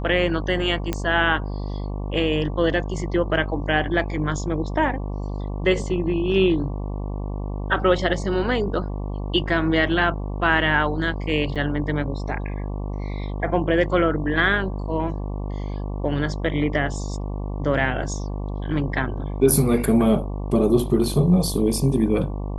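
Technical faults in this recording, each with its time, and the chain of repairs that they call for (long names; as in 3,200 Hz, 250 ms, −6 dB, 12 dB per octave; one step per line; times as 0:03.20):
mains buzz 50 Hz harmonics 23 −28 dBFS
0:00.93: click −10 dBFS
0:11.55–0:11.56: drop-out 6.7 ms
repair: click removal
hum removal 50 Hz, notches 23
repair the gap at 0:11.55, 6.7 ms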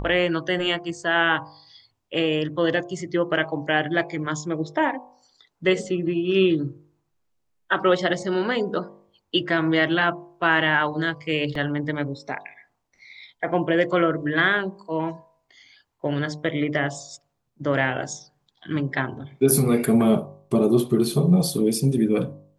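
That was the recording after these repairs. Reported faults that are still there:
none of them is left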